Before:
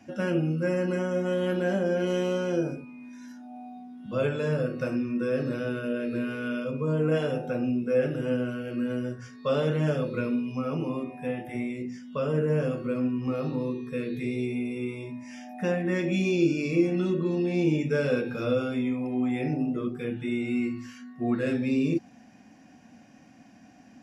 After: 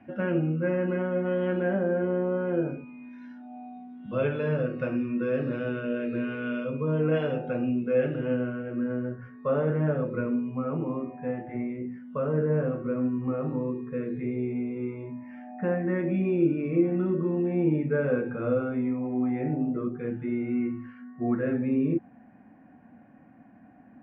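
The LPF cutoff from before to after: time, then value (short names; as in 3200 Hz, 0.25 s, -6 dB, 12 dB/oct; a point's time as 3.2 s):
LPF 24 dB/oct
1.59 s 2400 Hz
2.26 s 1400 Hz
2.83 s 3000 Hz
8.09 s 3000 Hz
8.76 s 1800 Hz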